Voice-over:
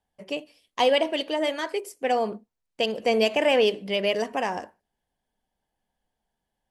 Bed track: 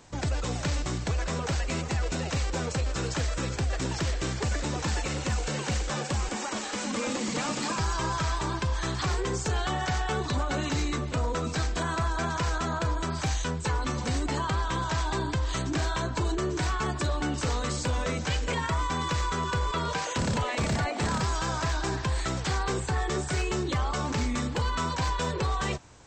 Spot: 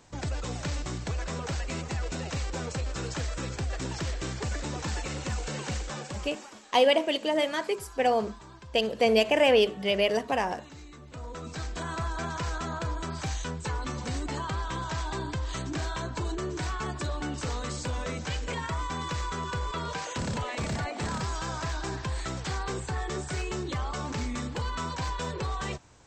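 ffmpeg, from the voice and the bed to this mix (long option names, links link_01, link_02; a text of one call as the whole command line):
ffmpeg -i stem1.wav -i stem2.wav -filter_complex "[0:a]adelay=5950,volume=-0.5dB[link_01];[1:a]volume=11dB,afade=type=out:start_time=5.69:duration=0.93:silence=0.177828,afade=type=in:start_time=10.97:duration=1.03:silence=0.188365[link_02];[link_01][link_02]amix=inputs=2:normalize=0" out.wav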